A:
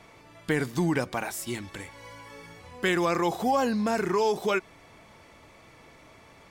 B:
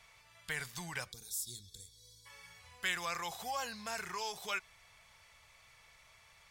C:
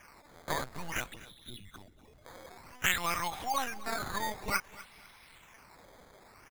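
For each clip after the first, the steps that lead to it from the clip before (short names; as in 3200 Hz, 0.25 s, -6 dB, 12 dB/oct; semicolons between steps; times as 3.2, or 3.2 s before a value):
passive tone stack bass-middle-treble 10-0-10; spectral gain 1.12–2.26, 510–3300 Hz -28 dB; gain -2 dB
LPC vocoder at 8 kHz pitch kept; decimation with a swept rate 11×, swing 100% 0.54 Hz; feedback echo 0.249 s, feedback 31%, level -18.5 dB; gain +6.5 dB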